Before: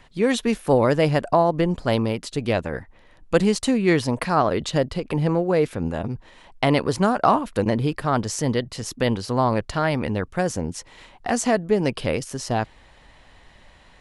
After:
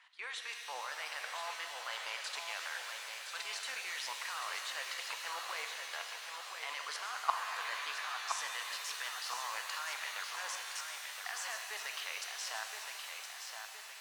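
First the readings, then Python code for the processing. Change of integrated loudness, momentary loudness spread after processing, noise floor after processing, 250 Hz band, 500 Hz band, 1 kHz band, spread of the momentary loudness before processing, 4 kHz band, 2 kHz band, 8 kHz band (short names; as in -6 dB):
-17.0 dB, 5 LU, -48 dBFS, under -40 dB, -31.0 dB, -16.0 dB, 8 LU, -6.0 dB, -8.0 dB, -8.0 dB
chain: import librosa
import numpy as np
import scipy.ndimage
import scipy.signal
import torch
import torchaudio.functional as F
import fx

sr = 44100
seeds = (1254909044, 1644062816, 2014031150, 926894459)

p1 = scipy.signal.sosfilt(scipy.signal.butter(4, 1100.0, 'highpass', fs=sr, output='sos'), x)
p2 = fx.high_shelf(p1, sr, hz=7400.0, db=-12.0)
p3 = fx.level_steps(p2, sr, step_db=21)
p4 = p3 + fx.echo_feedback(p3, sr, ms=1018, feedback_pct=52, wet_db=-6.5, dry=0)
p5 = fx.rev_shimmer(p4, sr, seeds[0], rt60_s=3.5, semitones=7, shimmer_db=-2, drr_db=4.0)
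y = p5 * librosa.db_to_amplitude(-1.0)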